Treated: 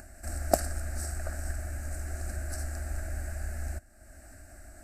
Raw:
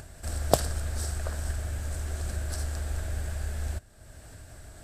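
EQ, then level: static phaser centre 680 Hz, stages 8; 0.0 dB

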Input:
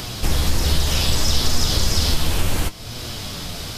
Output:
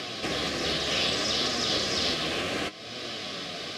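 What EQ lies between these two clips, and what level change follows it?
band-pass 300–3900 Hz; Butterworth band-stop 910 Hz, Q 3.4; band-stop 1.4 kHz, Q 10; 0.0 dB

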